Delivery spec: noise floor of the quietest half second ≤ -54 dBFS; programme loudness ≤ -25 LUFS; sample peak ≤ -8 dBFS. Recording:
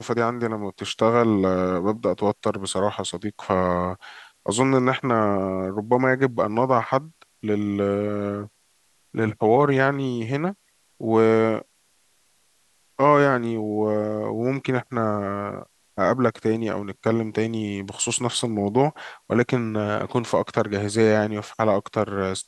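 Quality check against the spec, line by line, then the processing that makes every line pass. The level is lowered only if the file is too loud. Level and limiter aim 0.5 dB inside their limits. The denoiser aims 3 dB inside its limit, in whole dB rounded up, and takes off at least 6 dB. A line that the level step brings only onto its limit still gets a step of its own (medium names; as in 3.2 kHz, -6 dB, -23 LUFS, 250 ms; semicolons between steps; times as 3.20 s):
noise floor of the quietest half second -63 dBFS: pass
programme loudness -23.0 LUFS: fail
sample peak -4.0 dBFS: fail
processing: trim -2.5 dB; peak limiter -8.5 dBFS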